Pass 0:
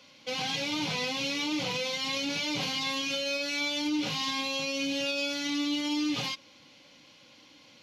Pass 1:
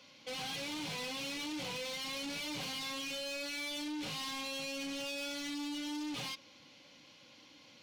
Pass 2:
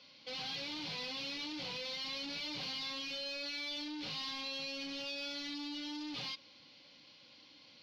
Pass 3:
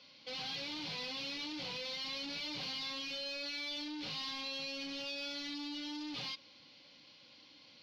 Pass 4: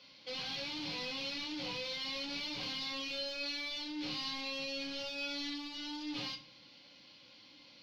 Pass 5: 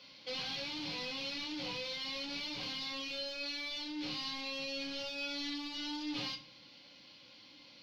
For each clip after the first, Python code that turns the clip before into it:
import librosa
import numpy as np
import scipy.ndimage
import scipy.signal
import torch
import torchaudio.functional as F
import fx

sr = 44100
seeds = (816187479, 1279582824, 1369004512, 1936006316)

y1 = 10.0 ** (-34.5 / 20.0) * np.tanh(x / 10.0 ** (-34.5 / 20.0))
y1 = y1 * 10.0 ** (-3.0 / 20.0)
y2 = fx.high_shelf_res(y1, sr, hz=6300.0, db=-11.5, q=3.0)
y2 = y2 * 10.0 ** (-4.0 / 20.0)
y3 = y2
y4 = fx.room_shoebox(y3, sr, seeds[0], volume_m3=31.0, walls='mixed', distance_m=0.3)
y5 = fx.rider(y4, sr, range_db=3, speed_s=0.5)